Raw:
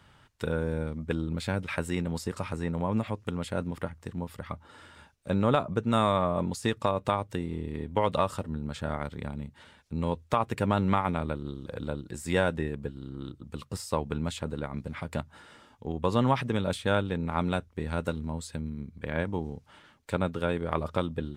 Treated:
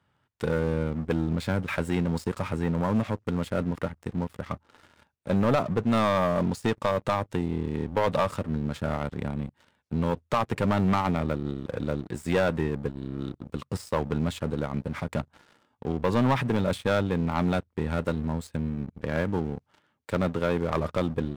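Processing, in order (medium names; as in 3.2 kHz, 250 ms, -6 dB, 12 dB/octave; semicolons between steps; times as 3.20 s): high-pass 80 Hz 12 dB/octave; treble shelf 2.6 kHz -8 dB; waveshaping leveller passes 3; trim -5 dB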